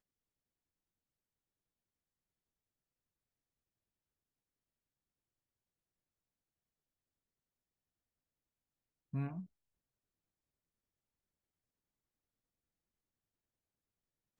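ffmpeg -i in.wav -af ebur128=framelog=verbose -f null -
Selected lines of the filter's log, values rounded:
Integrated loudness:
  I:         -42.9 LUFS
  Threshold: -53.5 LUFS
Loudness range:
  LRA:         3.7 LU
  Threshold: -70.2 LUFS
  LRA low:   -53.5 LUFS
  LRA high:  -49.8 LUFS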